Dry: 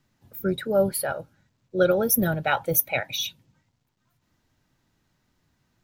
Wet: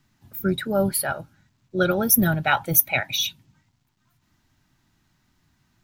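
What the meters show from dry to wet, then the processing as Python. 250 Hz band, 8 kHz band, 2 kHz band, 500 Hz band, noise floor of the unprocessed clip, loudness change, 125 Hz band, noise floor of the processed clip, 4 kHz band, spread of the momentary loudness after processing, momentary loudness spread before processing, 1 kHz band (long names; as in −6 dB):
+3.5 dB, +4.5 dB, +4.0 dB, −2.5 dB, −73 dBFS, +2.5 dB, +4.0 dB, −69 dBFS, +4.5 dB, 11 LU, 11 LU, +3.0 dB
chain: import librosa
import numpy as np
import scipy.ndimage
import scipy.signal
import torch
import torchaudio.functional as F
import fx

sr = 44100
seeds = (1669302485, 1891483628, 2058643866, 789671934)

y = fx.peak_eq(x, sr, hz=500.0, db=-11.5, octaves=0.57)
y = y * 10.0 ** (4.5 / 20.0)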